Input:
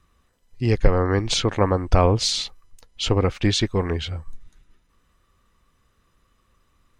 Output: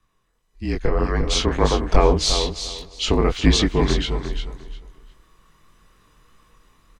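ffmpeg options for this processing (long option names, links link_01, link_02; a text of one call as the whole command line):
ffmpeg -i in.wav -filter_complex "[0:a]flanger=delay=19:depth=5.8:speed=1.7,asplit=2[link_01][link_02];[link_02]aecho=0:1:351|702|1053:0.355|0.0639|0.0115[link_03];[link_01][link_03]amix=inputs=2:normalize=0,dynaudnorm=framelen=210:gausssize=11:maxgain=12.5dB,asplit=2[link_04][link_05];[link_05]adelay=283,lowpass=frequency=3200:poles=1,volume=-23.5dB,asplit=2[link_06][link_07];[link_07]adelay=283,lowpass=frequency=3200:poles=1,volume=0.5,asplit=2[link_08][link_09];[link_09]adelay=283,lowpass=frequency=3200:poles=1,volume=0.5[link_10];[link_06][link_08][link_10]amix=inputs=3:normalize=0[link_11];[link_04][link_11]amix=inputs=2:normalize=0,afreqshift=-41,volume=-1dB" out.wav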